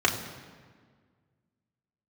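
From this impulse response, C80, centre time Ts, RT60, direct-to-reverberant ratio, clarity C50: 10.0 dB, 28 ms, 1.7 s, −2.0 dB, 8.5 dB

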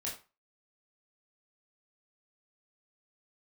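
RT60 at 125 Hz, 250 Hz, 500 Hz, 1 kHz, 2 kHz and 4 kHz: 0.30, 0.30, 0.30, 0.35, 0.30, 0.25 seconds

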